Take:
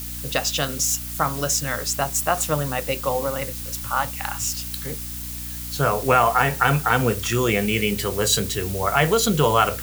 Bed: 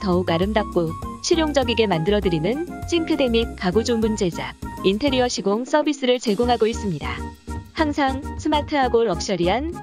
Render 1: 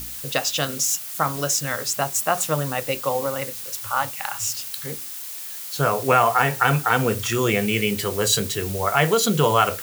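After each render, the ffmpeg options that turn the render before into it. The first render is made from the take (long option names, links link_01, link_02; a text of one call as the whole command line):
ffmpeg -i in.wav -af "bandreject=frequency=60:width_type=h:width=4,bandreject=frequency=120:width_type=h:width=4,bandreject=frequency=180:width_type=h:width=4,bandreject=frequency=240:width_type=h:width=4,bandreject=frequency=300:width_type=h:width=4" out.wav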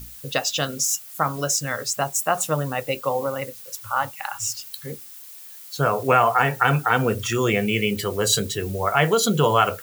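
ffmpeg -i in.wav -af "afftdn=noise_reduction=10:noise_floor=-34" out.wav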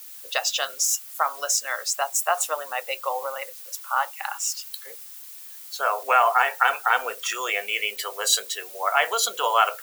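ffmpeg -i in.wav -af "highpass=frequency=630:width=0.5412,highpass=frequency=630:width=1.3066" out.wav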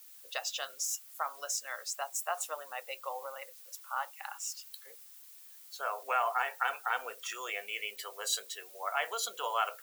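ffmpeg -i in.wav -af "volume=-12dB" out.wav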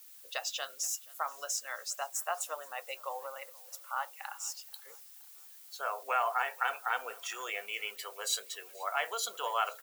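ffmpeg -i in.wav -af "aecho=1:1:478|956|1434:0.0631|0.0284|0.0128" out.wav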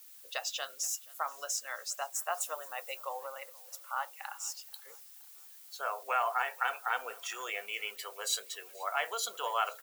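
ffmpeg -i in.wav -filter_complex "[0:a]asettb=1/sr,asplit=3[link_01][link_02][link_03];[link_01]atrim=end=2.314[link_04];[link_02]atrim=start=2.31:end=3.05,asetpts=PTS-STARTPTS,afade=type=in:duration=0.004:curve=qsin,afade=type=out:start_time=0.736:duration=0.004:curve=qsin,highshelf=frequency=9700:gain=5[link_05];[link_03]atrim=start=3.046[link_06];[link_04][link_05]acrossfade=duration=0.004:curve1=hsin:curve2=qsin[link_07];[link_07][link_06]acrossfade=duration=0.004:curve1=qsin:curve2=hsin,asettb=1/sr,asplit=3[link_08][link_09][link_10];[link_08]atrim=end=5.934[link_11];[link_09]atrim=start=5.93:end=6.88,asetpts=PTS-STARTPTS,afade=type=in:duration=0.004:curve=qsin,afade=type=out:start_time=0.946:duration=0.004:curve=qsin,highpass=frequency=240:poles=1[link_12];[link_10]atrim=start=6.876[link_13];[link_11][link_12]acrossfade=duration=0.004:curve1=hsin:curve2=qsin[link_14];[link_14][link_13]acrossfade=duration=0.004:curve1=qsin:curve2=hsin" out.wav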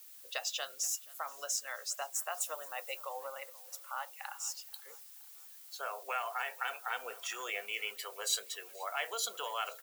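ffmpeg -i in.wav -filter_complex "[0:a]acrossover=split=860|1600[link_01][link_02][link_03];[link_01]alimiter=level_in=10.5dB:limit=-24dB:level=0:latency=1:release=103,volume=-10.5dB[link_04];[link_02]acompressor=threshold=-48dB:ratio=6[link_05];[link_04][link_05][link_03]amix=inputs=3:normalize=0" out.wav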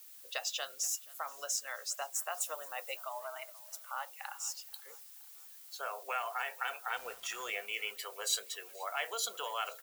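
ffmpeg -i in.wav -filter_complex "[0:a]asettb=1/sr,asplit=3[link_01][link_02][link_03];[link_01]atrim=end=2.964[link_04];[link_02]atrim=start=2.96:end=3.87,asetpts=PTS-STARTPTS,afade=type=in:duration=0.004:curve=qsin,afade=type=out:start_time=0.906:duration=0.004:curve=qsin,afreqshift=100[link_05];[link_03]atrim=start=3.866[link_06];[link_04][link_05]acrossfade=duration=0.004:curve1=hsin:curve2=qsin[link_07];[link_07][link_06]acrossfade=duration=0.004:curve1=qsin:curve2=hsin,asettb=1/sr,asplit=3[link_08][link_09][link_10];[link_08]atrim=end=6.944[link_11];[link_09]atrim=start=6.94:end=7.55,asetpts=PTS-STARTPTS,afade=type=in:duration=0.004:curve=qsin,afade=type=out:start_time=0.606:duration=0.004:curve=qsin,aeval=exprs='val(0)*gte(abs(val(0)),0.00398)':channel_layout=same[link_12];[link_10]atrim=start=7.546[link_13];[link_11][link_12]acrossfade=duration=0.004:curve1=hsin:curve2=qsin[link_14];[link_14][link_13]acrossfade=duration=0.004:curve1=qsin:curve2=hsin" out.wav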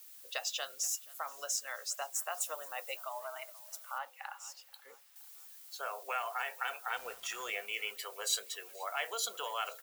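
ffmpeg -i in.wav -filter_complex "[0:a]asettb=1/sr,asplit=3[link_01][link_02][link_03];[link_01]atrim=end=3.984[link_04];[link_02]atrim=start=3.98:end=5.16,asetpts=PTS-STARTPTS,afade=type=in:duration=0.004:curve=qsin,afade=type=out:start_time=1.176:duration=0.004:curve=qsin,bass=frequency=250:gain=6,treble=frequency=4000:gain=-10[link_05];[link_03]atrim=start=5.156[link_06];[link_04][link_05]acrossfade=duration=0.004:curve1=hsin:curve2=qsin[link_07];[link_07][link_06]acrossfade=duration=0.004:curve1=qsin:curve2=hsin" out.wav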